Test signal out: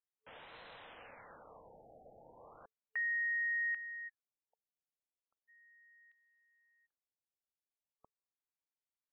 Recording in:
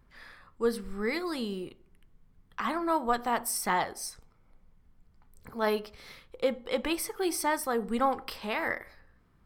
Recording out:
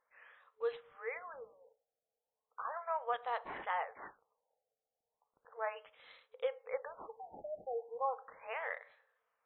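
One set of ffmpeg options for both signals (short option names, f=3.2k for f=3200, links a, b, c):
-af "afftfilt=real='re*between(b*sr/4096,440,8500)':imag='im*between(b*sr/4096,440,8500)':win_size=4096:overlap=0.75,acrusher=samples=6:mix=1:aa=0.000001,afftfilt=real='re*lt(b*sr/1024,810*pow(4200/810,0.5+0.5*sin(2*PI*0.36*pts/sr)))':imag='im*lt(b*sr/1024,810*pow(4200/810,0.5+0.5*sin(2*PI*0.36*pts/sr)))':win_size=1024:overlap=0.75,volume=-8dB"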